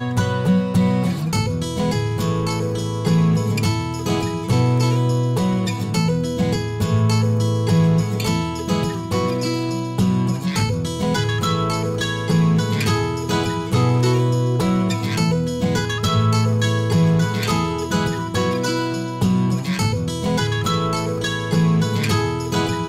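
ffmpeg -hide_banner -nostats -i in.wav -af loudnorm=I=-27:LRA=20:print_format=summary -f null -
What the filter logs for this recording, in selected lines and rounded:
Input Integrated:    -19.9 LUFS
Input True Peak:      -7.1 dBTP
Input LRA:             1.8 LU
Input Threshold:     -29.9 LUFS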